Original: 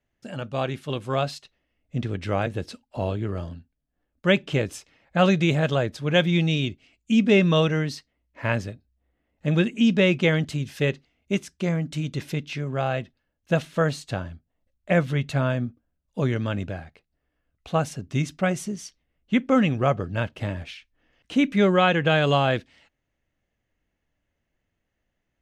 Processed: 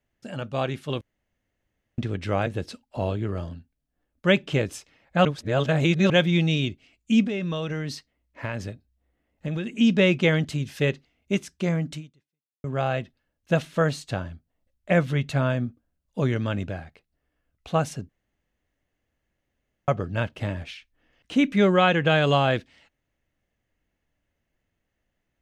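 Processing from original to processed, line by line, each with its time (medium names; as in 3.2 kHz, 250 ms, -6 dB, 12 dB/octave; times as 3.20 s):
1.01–1.98 s: room tone
5.25–6.10 s: reverse
7.23–9.72 s: compression 10:1, threshold -25 dBFS
11.93–12.64 s: fade out exponential
18.09–19.88 s: room tone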